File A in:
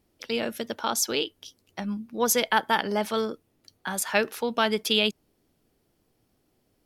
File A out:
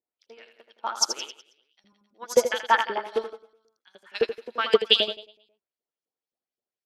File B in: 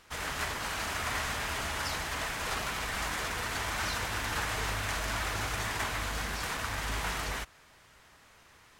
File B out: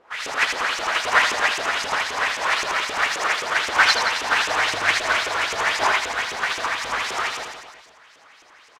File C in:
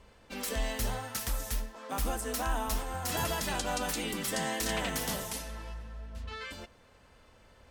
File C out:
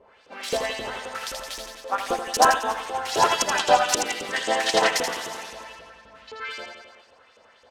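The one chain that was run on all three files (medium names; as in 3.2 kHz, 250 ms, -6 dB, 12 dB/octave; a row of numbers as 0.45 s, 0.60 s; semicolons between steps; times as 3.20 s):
dynamic bell 360 Hz, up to +4 dB, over -48 dBFS, Q 3.4; LFO band-pass saw up 3.8 Hz 420–6600 Hz; reverse bouncing-ball echo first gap 80 ms, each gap 1.1×, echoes 5; upward expansion 2.5:1, over -42 dBFS; peak normalisation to -3 dBFS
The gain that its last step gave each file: +11.0 dB, +24.0 dB, +23.0 dB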